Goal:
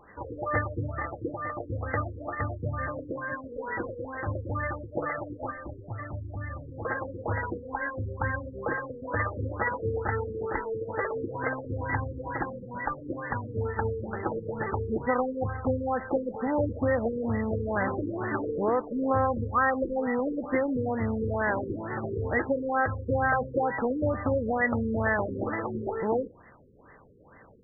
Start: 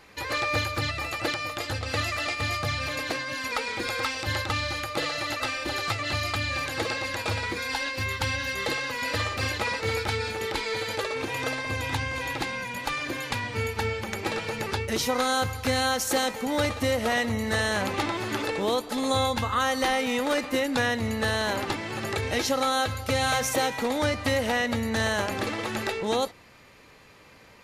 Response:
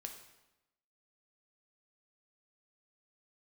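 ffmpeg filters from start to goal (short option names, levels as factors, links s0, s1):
-filter_complex "[0:a]lowpass=f=2700:t=q:w=3.1,asettb=1/sr,asplit=3[s0][s1][s2];[s0]atrim=end=5.514[s3];[s1]atrim=start=5.51:end=6.85,asetpts=PTS-STARTPTS,afade=t=in:d=0.004:c=qsin,afade=t=out:st=1.336:d=0.004:c=qsin,acrossover=split=210|550[s4][s5][s6];[s4]acompressor=threshold=0.0224:ratio=4[s7];[s5]acompressor=threshold=0.00316:ratio=4[s8];[s6]acompressor=threshold=0.0224:ratio=4[s9];[s7][s8][s9]amix=inputs=3:normalize=0[s10];[s2]atrim=start=6.846[s11];[s3][s10]acrossfade=d=0.004:c1=hsin:c2=qsin[s12];[s12][s11]acrossfade=d=0.004:c1=qsin:c2=hsin,afftfilt=real='re*lt(b*sr/1024,500*pow(2100/500,0.5+0.5*sin(2*PI*2.2*pts/sr)))':imag='im*lt(b*sr/1024,500*pow(2100/500,0.5+0.5*sin(2*PI*2.2*pts/sr)))':win_size=1024:overlap=0.75"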